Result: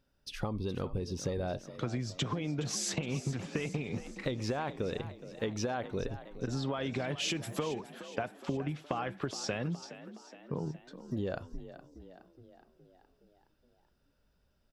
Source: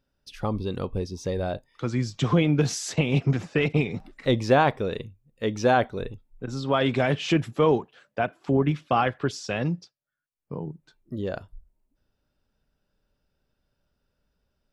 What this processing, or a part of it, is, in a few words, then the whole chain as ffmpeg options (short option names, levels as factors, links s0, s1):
serial compression, leveller first: -filter_complex "[0:a]asettb=1/sr,asplit=3[s0][s1][s2];[s0]atrim=end=7.184[s3];[s1]atrim=start=7.18:end=7.67,asetpts=PTS-STARTPTS,afade=t=in:d=0.004:c=qsin,afade=t=out:st=0.486:d=0.004:c=qsin,aemphasis=mode=production:type=75fm[s4];[s2]atrim=start=7.666[s5];[s3][s4]acrossfade=d=0.004:c1=hsin:c2=qsin[s6];[s6][s5]acrossfade=d=0.004:c1=qsin:c2=hsin,acompressor=threshold=0.0631:ratio=6,acompressor=threshold=0.0251:ratio=6,asplit=7[s7][s8][s9][s10][s11][s12][s13];[s8]adelay=418,afreqshift=43,volume=0.2[s14];[s9]adelay=836,afreqshift=86,volume=0.112[s15];[s10]adelay=1254,afreqshift=129,volume=0.0624[s16];[s11]adelay=1672,afreqshift=172,volume=0.0351[s17];[s12]adelay=2090,afreqshift=215,volume=0.0197[s18];[s13]adelay=2508,afreqshift=258,volume=0.011[s19];[s7][s14][s15][s16][s17][s18][s19]amix=inputs=7:normalize=0,volume=1.12"